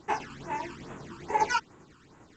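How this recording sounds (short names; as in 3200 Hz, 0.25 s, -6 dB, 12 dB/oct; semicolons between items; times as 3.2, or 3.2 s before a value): phasing stages 12, 2.4 Hz, lowest notch 620–5000 Hz; tremolo saw down 10 Hz, depth 40%; G.722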